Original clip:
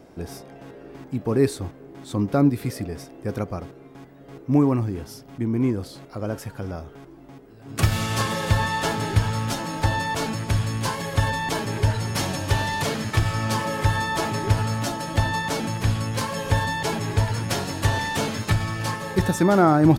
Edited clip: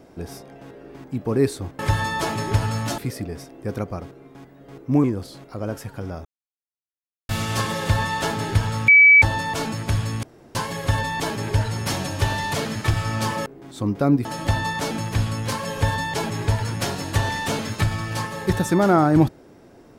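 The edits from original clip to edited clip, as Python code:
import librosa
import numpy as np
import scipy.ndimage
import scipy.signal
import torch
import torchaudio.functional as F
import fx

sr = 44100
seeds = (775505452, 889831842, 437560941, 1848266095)

y = fx.edit(x, sr, fx.swap(start_s=1.79, length_s=0.79, other_s=13.75, other_length_s=1.19),
    fx.cut(start_s=4.64, length_s=1.01),
    fx.silence(start_s=6.86, length_s=1.04),
    fx.bleep(start_s=9.49, length_s=0.34, hz=2290.0, db=-7.5),
    fx.insert_room_tone(at_s=10.84, length_s=0.32), tone=tone)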